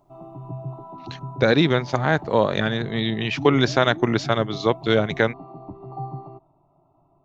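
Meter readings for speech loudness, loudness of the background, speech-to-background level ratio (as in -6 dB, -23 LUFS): -21.5 LUFS, -36.5 LUFS, 15.0 dB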